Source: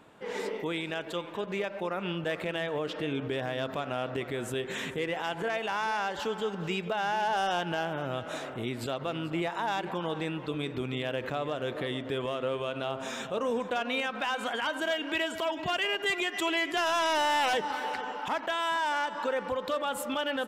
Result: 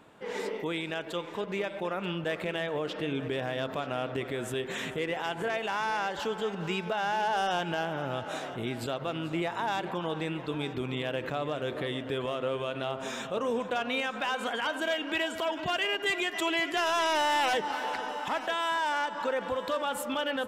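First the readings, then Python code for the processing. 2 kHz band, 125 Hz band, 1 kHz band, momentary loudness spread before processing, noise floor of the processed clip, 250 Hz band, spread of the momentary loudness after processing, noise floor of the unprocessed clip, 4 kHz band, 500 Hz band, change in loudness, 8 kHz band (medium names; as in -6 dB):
0.0 dB, 0.0 dB, 0.0 dB, 7 LU, -40 dBFS, 0.0 dB, 6 LU, -41 dBFS, 0.0 dB, 0.0 dB, 0.0 dB, 0.0 dB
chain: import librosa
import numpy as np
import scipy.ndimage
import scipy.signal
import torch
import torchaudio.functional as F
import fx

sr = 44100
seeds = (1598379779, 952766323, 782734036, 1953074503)

y = x + 10.0 ** (-15.5 / 20.0) * np.pad(x, (int(934 * sr / 1000.0), 0))[:len(x)]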